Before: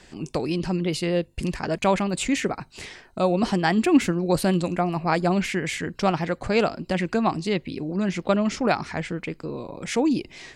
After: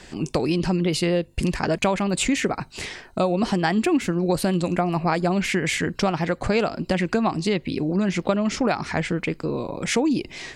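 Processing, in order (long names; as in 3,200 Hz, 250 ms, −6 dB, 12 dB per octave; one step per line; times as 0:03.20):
downward compressor 5 to 1, threshold −24 dBFS, peak gain reduction 11.5 dB
level +6 dB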